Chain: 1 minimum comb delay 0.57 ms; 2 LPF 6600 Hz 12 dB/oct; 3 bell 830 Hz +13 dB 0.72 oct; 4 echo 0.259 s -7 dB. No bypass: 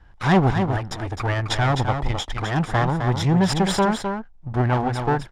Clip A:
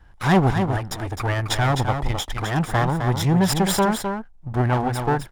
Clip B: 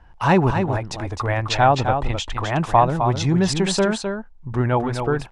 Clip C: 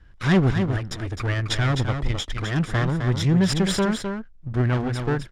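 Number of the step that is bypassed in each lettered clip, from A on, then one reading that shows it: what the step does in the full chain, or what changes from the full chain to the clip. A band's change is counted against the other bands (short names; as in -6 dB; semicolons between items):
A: 2, 8 kHz band +4.5 dB; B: 1, 125 Hz band -3.0 dB; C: 3, 1 kHz band -8.5 dB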